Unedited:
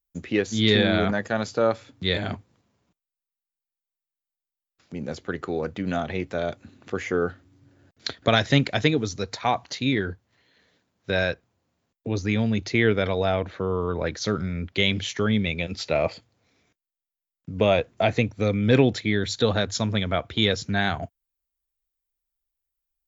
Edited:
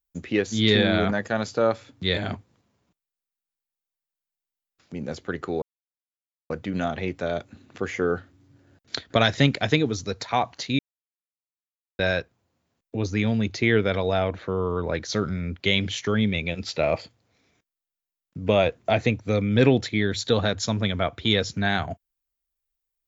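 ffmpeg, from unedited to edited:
-filter_complex "[0:a]asplit=4[a][b][c][d];[a]atrim=end=5.62,asetpts=PTS-STARTPTS,afade=t=out:st=5.616:d=0.004:c=hsin,apad=pad_dur=0.88[e];[b]atrim=start=5.62:end=9.91,asetpts=PTS-STARTPTS,afade=t=in:d=0.004:c=hsin,afade=t=out:st=4.286:d=0.004:c=hsin[f];[c]atrim=start=9.91:end=11.11,asetpts=PTS-STARTPTS,volume=0[g];[d]atrim=start=11.11,asetpts=PTS-STARTPTS,afade=t=in:d=0.004:c=hsin[h];[e][f][g][h]concat=n=4:v=0:a=1"

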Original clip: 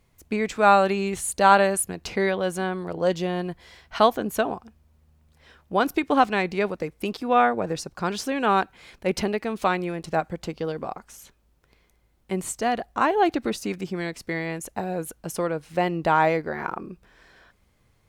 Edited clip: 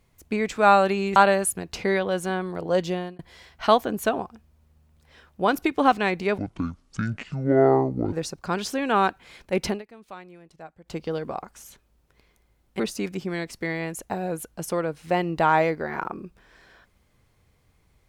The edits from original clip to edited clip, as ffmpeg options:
-filter_complex "[0:a]asplit=8[a][b][c][d][e][f][g][h];[a]atrim=end=1.162[i];[b]atrim=start=1.478:end=3.51,asetpts=PTS-STARTPTS,afade=t=out:st=1.762:d=0.27[j];[c]atrim=start=3.51:end=6.704,asetpts=PTS-STARTPTS,afade=t=in:d=0.004:c=hsin[k];[d]atrim=start=6.7:end=7.66,asetpts=PTS-STARTPTS,asetrate=24255,aresample=44100[l];[e]atrim=start=7.656:end=9.36,asetpts=PTS-STARTPTS,afade=t=out:st=1.574:d=0.13:silence=0.11885[m];[f]atrim=start=9.36:end=10.37,asetpts=PTS-STARTPTS,volume=-18.5dB[n];[g]atrim=start=10.37:end=12.332,asetpts=PTS-STARTPTS,afade=t=in:d=0.13:silence=0.11885[o];[h]atrim=start=13.458[p];[j][k]concat=n=2:v=0:a=1[q];[i][q]acrossfade=d=0.004:c1=hsin:c2=hsin[r];[r][l]acrossfade=d=0.004:c1=hsin:c2=hsin[s];[m][n][o]concat=n=3:v=0:a=1[t];[s][t]acrossfade=d=0.004:c1=hsin:c2=hsin[u];[u][p]acrossfade=d=0.004:c1=hsin:c2=hsin"

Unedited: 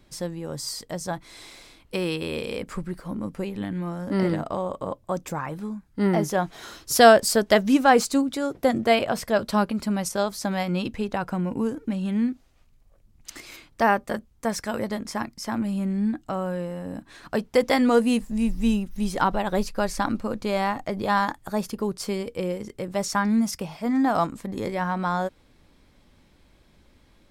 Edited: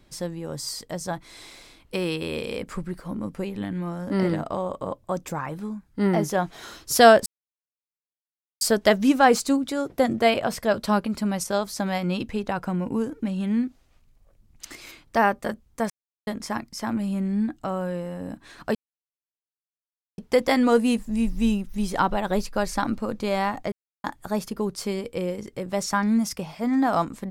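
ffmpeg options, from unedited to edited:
-filter_complex "[0:a]asplit=7[a][b][c][d][e][f][g];[a]atrim=end=7.26,asetpts=PTS-STARTPTS,afade=t=out:st=7.256:d=0.004:c=hsin,apad=pad_dur=1.35[h];[b]atrim=start=7.26:end=14.55,asetpts=PTS-STARTPTS,afade=t=in:d=0.004:c=hsin,afade=t=out:st=7.286:d=0.004:c=hsin[i];[c]atrim=start=14.55:end=14.92,asetpts=PTS-STARTPTS,volume=0[j];[d]atrim=start=14.92:end=17.4,asetpts=PTS-STARTPTS,afade=t=in:d=0.004:c=hsin,afade=t=out:st=2.476:d=0.004:c=hsin,apad=pad_dur=1.43[k];[e]atrim=start=17.4:end=20.94,asetpts=PTS-STARTPTS,afade=t=in:d=0.004:c=hsin,afade=t=out:st=3.536:d=0.004:c=hsin[l];[f]atrim=start=20.94:end=21.26,asetpts=PTS-STARTPTS,volume=0[m];[g]atrim=start=21.26,asetpts=PTS-STARTPTS,afade=t=in:d=0.004:c=hsin[n];[h][i][j][k][l][m][n]concat=n=7:v=0:a=1"

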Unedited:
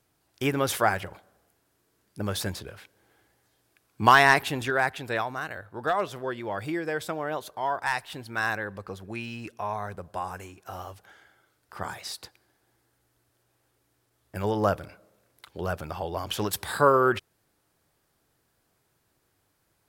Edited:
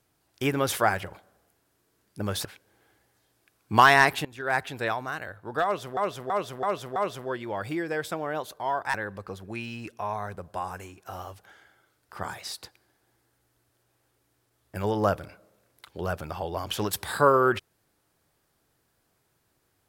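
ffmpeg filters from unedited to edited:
-filter_complex "[0:a]asplit=8[a][b][c][d][e][f][g][h];[a]atrim=end=2.452[i];[b]atrim=start=2.738:end=4.54,asetpts=PTS-STARTPTS,afade=t=out:st=1.798:d=0.004:c=hsin:silence=0.105925[j];[c]atrim=start=4.54:end=6.262,asetpts=PTS-STARTPTS,afade=t=in:d=0.3:c=qua:silence=0.105925[k];[d]atrim=start=5.928:end=6.262[l];[e]atrim=start=5.928:end=6.262[m];[f]atrim=start=5.928:end=6.262[n];[g]atrim=start=5.928:end=7.912[o];[h]atrim=start=8.538[p];[j][k]concat=n=2:v=0:a=1[q];[i][q]acrossfade=d=0.004:c1=hsin:c2=hsin[r];[r][l]acrossfade=d=0.004:c1=hsin:c2=hsin[s];[s][m]acrossfade=d=0.004:c1=hsin:c2=hsin[t];[t][n]acrossfade=d=0.004:c1=hsin:c2=hsin[u];[u][o]acrossfade=d=0.004:c1=hsin:c2=hsin[v];[v][p]acrossfade=d=0.004:c1=hsin:c2=hsin"

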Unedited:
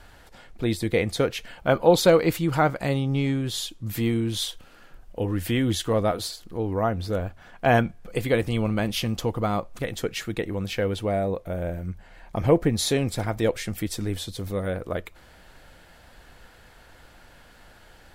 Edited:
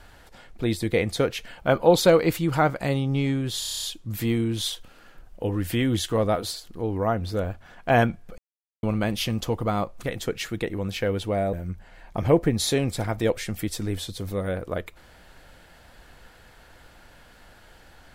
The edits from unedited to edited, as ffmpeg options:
-filter_complex "[0:a]asplit=12[a][b][c][d][e][f][g][h][i][j][k][l];[a]atrim=end=3.622[m];[b]atrim=start=3.588:end=3.622[n];[c]atrim=start=3.588:end=3.622[o];[d]atrim=start=3.588:end=3.622[p];[e]atrim=start=3.588:end=3.622[q];[f]atrim=start=3.588:end=3.622[r];[g]atrim=start=3.588:end=3.622[s];[h]atrim=start=3.588:end=3.622[t];[i]atrim=start=3.588:end=8.14,asetpts=PTS-STARTPTS,afade=t=out:st=4.548:d=0.004:c=hsin[u];[j]atrim=start=8.14:end=8.59,asetpts=PTS-STARTPTS,volume=0[v];[k]atrim=start=8.59:end=11.292,asetpts=PTS-STARTPTS,afade=t=in:d=0.004:c=hsin[w];[l]atrim=start=11.718[x];[m][n]acrossfade=d=0.004:c1=hsin:c2=hsin[y];[y][o]acrossfade=d=0.004:c1=hsin:c2=hsin[z];[z][p]acrossfade=d=0.004:c1=hsin:c2=hsin[aa];[aa][q]acrossfade=d=0.004:c1=hsin:c2=hsin[ab];[ab][r]acrossfade=d=0.004:c1=hsin:c2=hsin[ac];[ac][s]acrossfade=d=0.004:c1=hsin:c2=hsin[ad];[ad][t]acrossfade=d=0.004:c1=hsin:c2=hsin[ae];[u][v][w]concat=n=3:v=0:a=1[af];[ae][af]acrossfade=d=0.004:c1=hsin:c2=hsin[ag];[ag][x]acrossfade=d=0.004:c1=hsin:c2=hsin"

